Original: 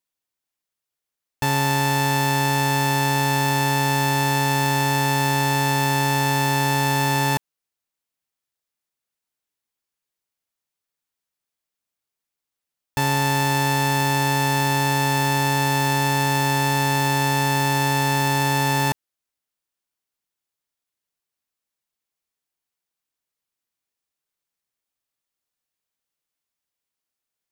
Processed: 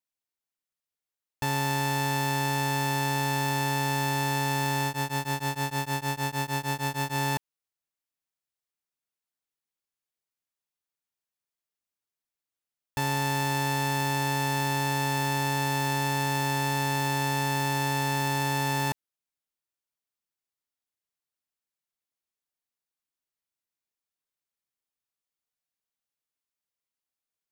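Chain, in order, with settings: 4.86–7.17 s: tremolo of two beating tones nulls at 6.5 Hz; trim -7 dB

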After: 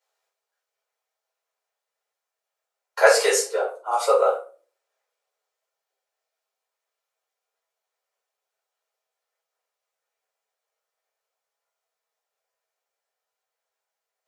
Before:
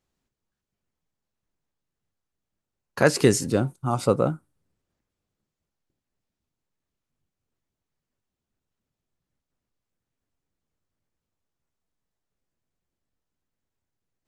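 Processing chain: steep high-pass 450 Hz 72 dB/octave; 3.41–3.92 s: treble shelf 2.2 kHz -11 dB; simulated room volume 230 m³, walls furnished, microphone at 4.7 m; trim -3 dB

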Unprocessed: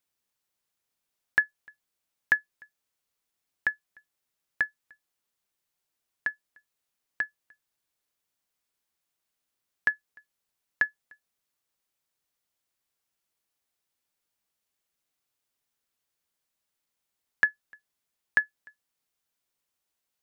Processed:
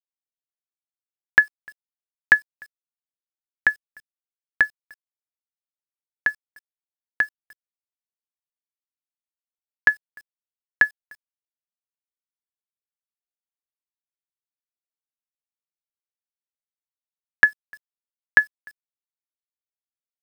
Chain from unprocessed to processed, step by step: bit crusher 10-bit; trim +8.5 dB

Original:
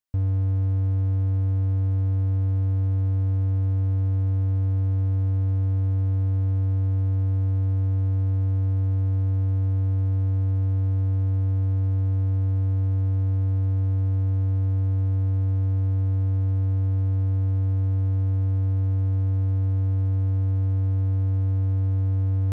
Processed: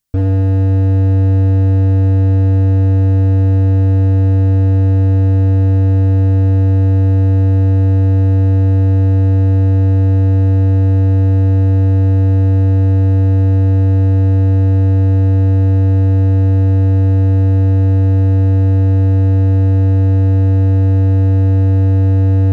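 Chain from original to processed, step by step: tone controls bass +12 dB, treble +6 dB; de-hum 54.51 Hz, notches 21; hard clipper -19.5 dBFS, distortion -8 dB; reverberation RT60 1.8 s, pre-delay 7 ms, DRR 12.5 dB; trim +8 dB

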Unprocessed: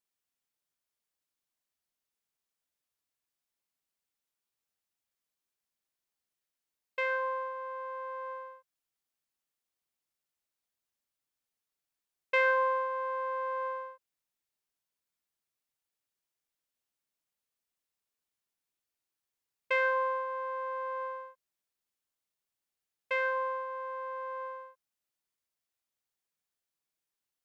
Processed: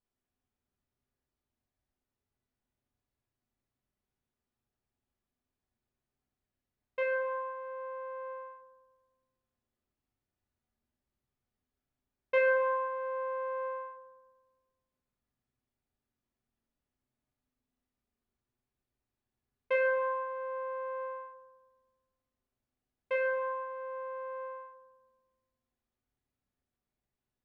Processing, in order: tilt EQ -3.5 dB/octave; reverberation RT60 1.4 s, pre-delay 4 ms, DRR -3 dB; trim -2.5 dB

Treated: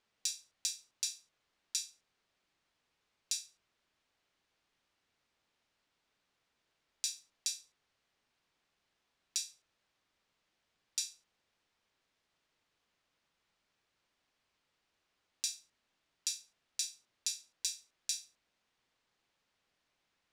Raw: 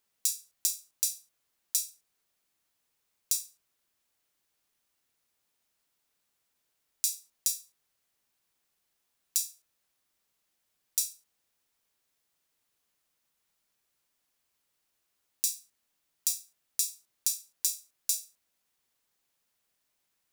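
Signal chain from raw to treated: low-pass 4.2 kHz 12 dB/octave; trim +3.5 dB

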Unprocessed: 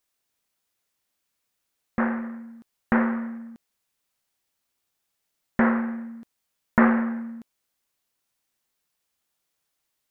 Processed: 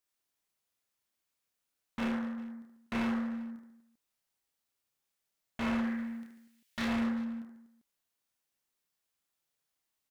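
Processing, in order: 5.84–6.86 s: resonant high shelf 1.6 kHz +9.5 dB, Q 1.5; peak limiter -14.5 dBFS, peak gain reduction 10.5 dB; wavefolder -21.5 dBFS; reverse bouncing-ball echo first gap 30 ms, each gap 1.5×, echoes 5; trim -8.5 dB

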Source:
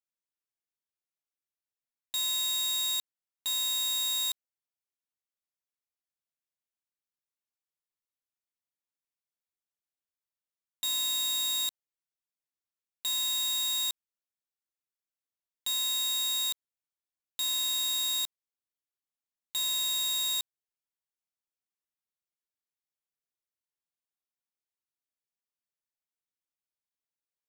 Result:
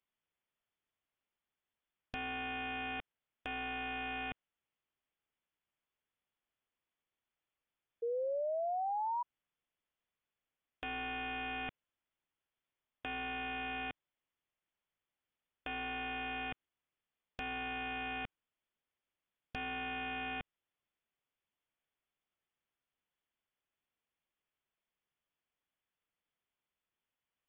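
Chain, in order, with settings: frequency inversion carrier 3.5 kHz; overload inside the chain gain 34 dB; painted sound rise, 8.02–9.23 s, 460–980 Hz -43 dBFS; trim +7.5 dB

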